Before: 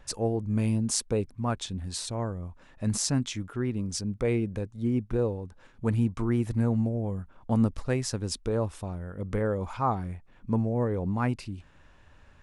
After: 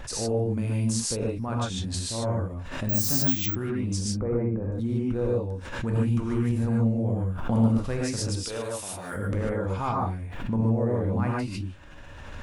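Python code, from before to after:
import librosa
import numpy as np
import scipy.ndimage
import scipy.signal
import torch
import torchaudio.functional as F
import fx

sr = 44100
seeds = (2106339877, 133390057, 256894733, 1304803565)

y = fx.recorder_agc(x, sr, target_db=-19.5, rise_db_per_s=16.0, max_gain_db=30)
y = fx.lowpass(y, sr, hz=1400.0, slope=24, at=(4.07, 4.7))
y = fx.tilt_eq(y, sr, slope=4.5, at=(8.42, 9.16))
y = fx.dmg_crackle(y, sr, seeds[0], per_s=30.0, level_db=-58.0)
y = fx.rev_gated(y, sr, seeds[1], gate_ms=170, shape='rising', drr_db=-4.0)
y = fx.resample_bad(y, sr, factor=2, down='filtered', up='zero_stuff', at=(2.89, 3.55))
y = fx.pre_swell(y, sr, db_per_s=50.0)
y = y * 10.0 ** (-5.0 / 20.0)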